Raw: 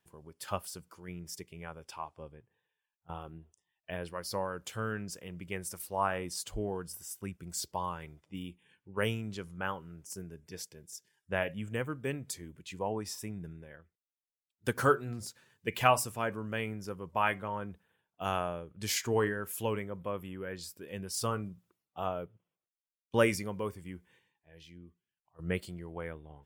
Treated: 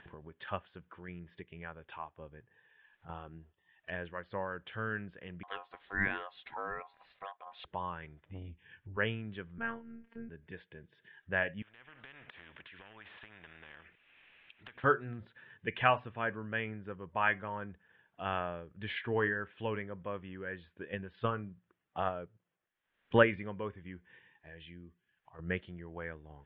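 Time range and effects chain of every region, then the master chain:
5.43–7.65 s: treble shelf 7.4 kHz +10 dB + ring modulator 890 Hz
8.25–8.97 s: resonant low shelf 130 Hz +11 dB, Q 1.5 + transformer saturation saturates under 320 Hz
9.58–10.29 s: tone controls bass +3 dB, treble -14 dB + robot voice 230 Hz + doubling 30 ms -6.5 dB
11.62–14.84 s: peaking EQ 2.5 kHz +14 dB 0.57 oct + compression 10:1, threshold -43 dBFS + spectrum-flattening compressor 4:1
20.62–23.33 s: transient shaper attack +8 dB, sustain -1 dB + distance through air 72 m
whole clip: steep low-pass 3.5 kHz 72 dB/octave; peaking EQ 1.7 kHz +9.5 dB 0.38 oct; upward compressor, threshold -39 dBFS; trim -3.5 dB

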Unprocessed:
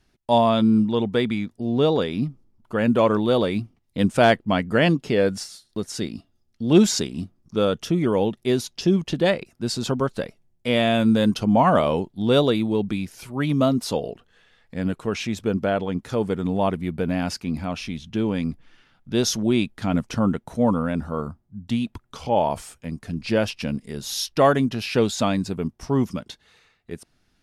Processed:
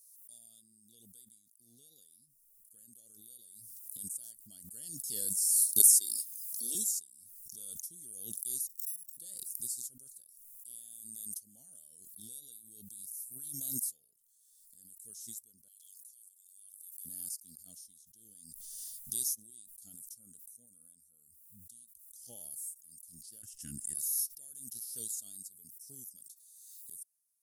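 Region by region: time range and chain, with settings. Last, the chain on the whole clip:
5.80–6.75 s: high-pass 310 Hz 24 dB/octave + level flattener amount 100%
8.67–9.17 s: sorted samples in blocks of 8 samples + careless resampling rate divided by 4×, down filtered, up hold + level held to a coarse grid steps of 18 dB
15.68–17.05 s: brick-wall FIR high-pass 2.4 kHz + compression 2.5:1, threshold -47 dBFS
23.42–23.95 s: FFT filter 110 Hz 0 dB, 210 Hz -5 dB, 330 Hz 0 dB, 530 Hz -23 dB, 1.2 kHz +4 dB, 1.9 kHz +4 dB, 2.7 kHz -1 dB, 4.2 kHz -24 dB, 7 kHz -12 dB, 12 kHz -23 dB + tape noise reduction on one side only encoder only
whole clip: inverse Chebyshev high-pass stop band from 2.6 kHz, stop band 70 dB; tilt EQ -1.5 dB/octave; swell ahead of each attack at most 26 dB/s; trim +12 dB

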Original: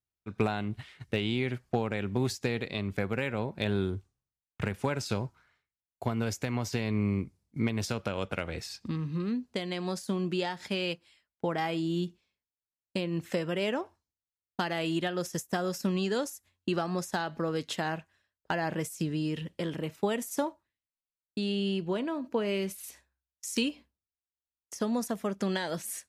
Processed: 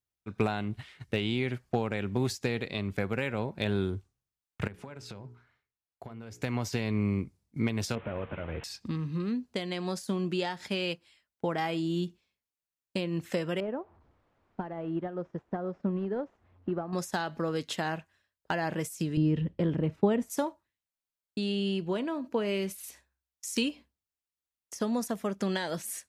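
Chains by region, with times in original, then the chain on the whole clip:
4.67–6.42 s: treble shelf 4.2 kHz -9 dB + hum notches 60/120/180/240/300/360/420/480 Hz + compression, threshold -40 dBFS
7.95–8.64 s: one-bit delta coder 16 kbps, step -43.5 dBFS + doubling 13 ms -11 dB
13.60–16.93 s: one-bit delta coder 64 kbps, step -45 dBFS + low-pass 1 kHz + upward expansion, over -42 dBFS
19.17–20.30 s: low-pass 3.7 kHz 6 dB/octave + tilt EQ -3 dB/octave
whole clip: none

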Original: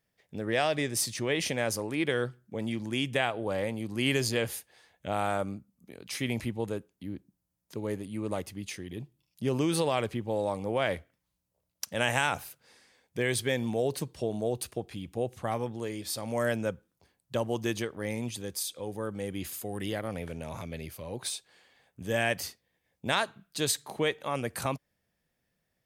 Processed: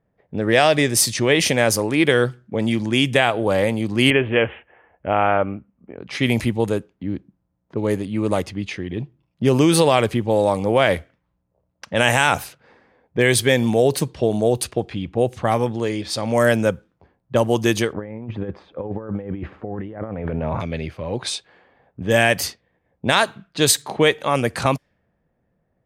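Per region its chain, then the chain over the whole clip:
4.10–5.98 s: steep low-pass 3.1 kHz 96 dB/octave + peaking EQ 150 Hz -6.5 dB 1.3 oct
17.93–20.60 s: low-pass 1.5 kHz + compressor with a negative ratio -39 dBFS, ratio -0.5
whole clip: level-controlled noise filter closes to 950 Hz, open at -27.5 dBFS; loudness maximiser +13.5 dB; trim -1 dB

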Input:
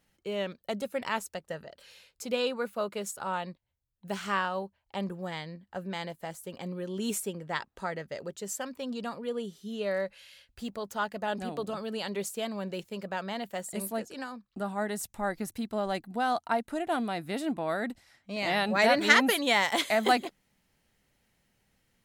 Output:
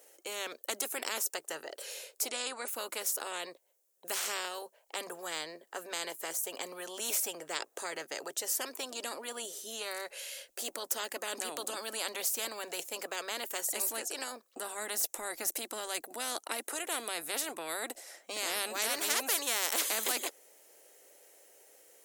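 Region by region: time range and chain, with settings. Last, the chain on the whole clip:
2.28–2.68 s: steep low-pass 10 kHz 96 dB/octave + bass shelf 460 Hz -6 dB
whole clip: inverse Chebyshev high-pass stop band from 210 Hz, stop band 40 dB; high-order bell 2 kHz -12.5 dB 2.9 oct; spectrum-flattening compressor 4:1; trim +2.5 dB

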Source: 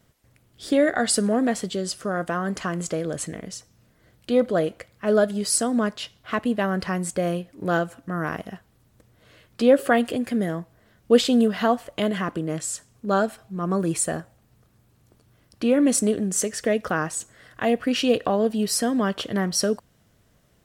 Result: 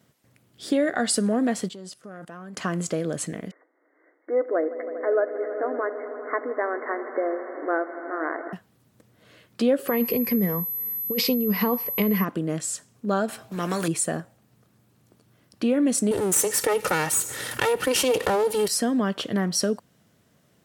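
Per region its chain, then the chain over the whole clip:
1.68–2.57 s: level held to a coarse grid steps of 20 dB + transformer saturation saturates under 300 Hz
3.51–8.53 s: brick-wall FIR band-pass 270–2200 Hz + echo with a slow build-up 80 ms, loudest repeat 5, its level -18 dB
9.87–12.23 s: rippled EQ curve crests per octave 0.86, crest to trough 13 dB + compressor with a negative ratio -19 dBFS + whistle 12 kHz -27 dBFS
13.28–13.88 s: gate -40 dBFS, range -10 dB + doubling 17 ms -12 dB + spectrum-flattening compressor 2:1
16.11–18.68 s: comb filter that takes the minimum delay 2.2 ms + peaking EQ 11 kHz +13.5 dB 1.2 oct + level flattener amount 50%
whole clip: high-pass 180 Hz 12 dB/octave; tone controls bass +6 dB, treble 0 dB; compression 2:1, threshold -21 dBFS

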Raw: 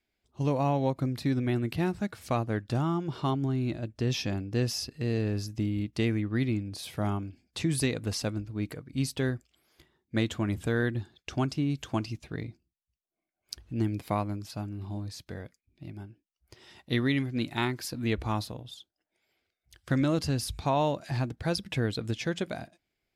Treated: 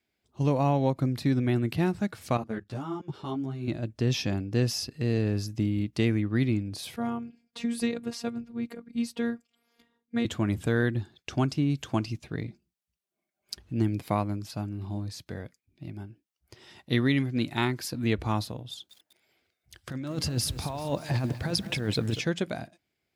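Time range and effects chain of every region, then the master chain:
2.37–3.68 s: bass shelf 85 Hz -6 dB + level held to a coarse grid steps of 16 dB + three-phase chorus
6.96–10.25 s: treble shelf 3.4 kHz -7 dB + robot voice 235 Hz
12.47–13.63 s: comb 5 ms, depth 51% + loudspeaker Doppler distortion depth 0.21 ms
18.70–22.21 s: compressor with a negative ratio -30 dBFS, ratio -0.5 + bit-crushed delay 194 ms, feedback 55%, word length 8-bit, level -12 dB
whole clip: high-pass 94 Hz; bass shelf 150 Hz +4.5 dB; trim +1.5 dB

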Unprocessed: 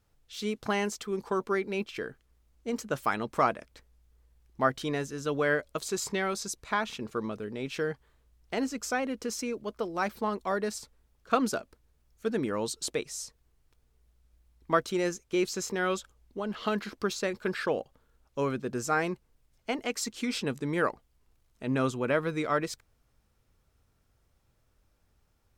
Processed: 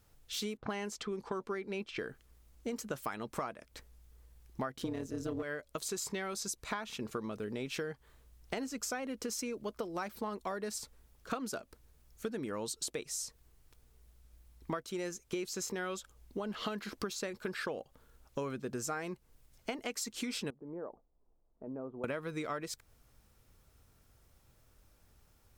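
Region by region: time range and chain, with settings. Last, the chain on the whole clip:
0.57–1.99 s: treble shelf 7.5 kHz -8 dB + level-controlled noise filter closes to 1.4 kHz, open at -28 dBFS
4.76–5.43 s: peaking EQ 270 Hz +13 dB 1.6 oct + waveshaping leveller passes 1 + AM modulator 180 Hz, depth 65%
20.50–22.04 s: peaking EQ 88 Hz -15 dB 1.3 oct + compression 2:1, threshold -45 dBFS + four-pole ladder low-pass 940 Hz, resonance 25%
whole clip: treble shelf 7.4 kHz +7 dB; compression 10:1, threshold -39 dBFS; trim +4 dB

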